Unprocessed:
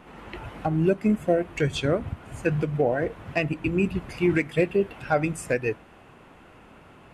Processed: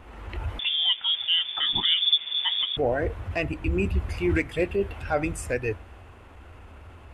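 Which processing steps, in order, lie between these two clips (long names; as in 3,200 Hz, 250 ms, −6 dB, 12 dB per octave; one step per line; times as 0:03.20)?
low shelf with overshoot 110 Hz +10 dB, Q 3
transient designer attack −4 dB, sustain +1 dB
0:00.59–0:02.77: voice inversion scrambler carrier 3,500 Hz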